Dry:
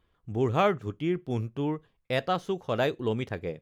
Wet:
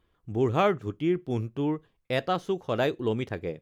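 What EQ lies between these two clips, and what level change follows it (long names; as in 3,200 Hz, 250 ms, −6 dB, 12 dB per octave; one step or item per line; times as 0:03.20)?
parametric band 330 Hz +3.5 dB 0.55 octaves
0.0 dB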